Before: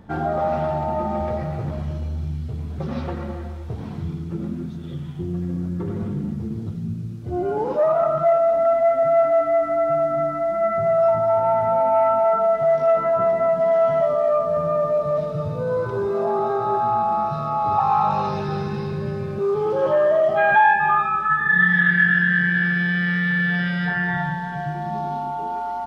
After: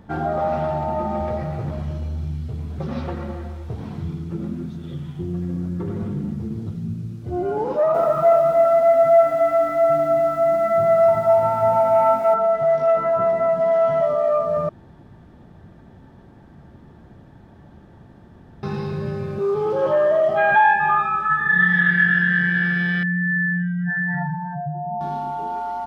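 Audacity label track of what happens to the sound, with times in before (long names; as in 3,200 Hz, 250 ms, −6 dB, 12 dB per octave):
7.660000	12.340000	feedback echo at a low word length 284 ms, feedback 35%, word length 8 bits, level −4 dB
14.690000	18.630000	fill with room tone
23.030000	25.010000	expanding power law on the bin magnitudes exponent 2.4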